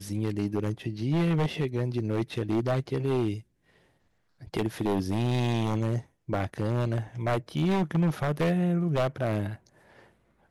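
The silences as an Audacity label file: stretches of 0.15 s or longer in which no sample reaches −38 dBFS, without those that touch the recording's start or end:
3.400000	4.430000	silence
6.010000	6.290000	silence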